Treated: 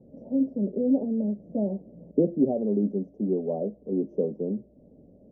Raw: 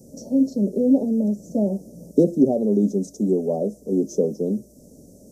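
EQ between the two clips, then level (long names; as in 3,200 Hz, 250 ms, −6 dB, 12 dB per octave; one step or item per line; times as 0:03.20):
elliptic low-pass filter 2,500 Hz, stop band 40 dB
−5.0 dB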